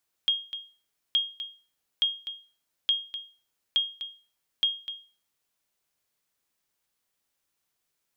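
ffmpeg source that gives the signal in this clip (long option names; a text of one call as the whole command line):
ffmpeg -f lavfi -i "aevalsrc='0.15*(sin(2*PI*3250*mod(t,0.87))*exp(-6.91*mod(t,0.87)/0.36)+0.266*sin(2*PI*3250*max(mod(t,0.87)-0.25,0))*exp(-6.91*max(mod(t,0.87)-0.25,0)/0.36))':duration=5.22:sample_rate=44100" out.wav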